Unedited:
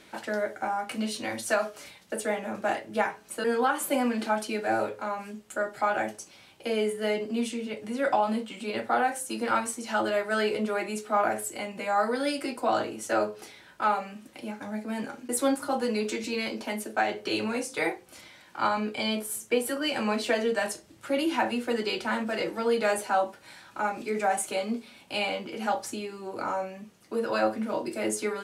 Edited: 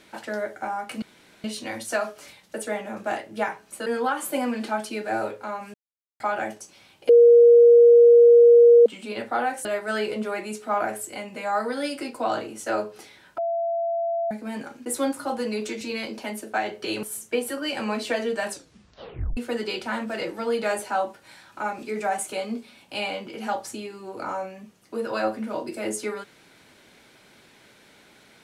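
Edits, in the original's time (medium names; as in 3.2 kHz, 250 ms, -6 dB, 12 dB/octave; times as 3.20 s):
1.02 s: insert room tone 0.42 s
5.32–5.78 s: mute
6.67–8.44 s: bleep 473 Hz -9 dBFS
9.23–10.08 s: delete
13.81–14.74 s: bleep 675 Hz -22.5 dBFS
17.46–19.22 s: delete
20.68 s: tape stop 0.88 s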